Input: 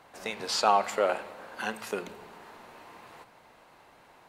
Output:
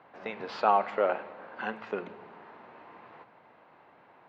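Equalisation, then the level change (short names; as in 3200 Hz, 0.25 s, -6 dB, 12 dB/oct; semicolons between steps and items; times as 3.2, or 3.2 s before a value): BPF 120–2500 Hz; air absorption 130 m; 0.0 dB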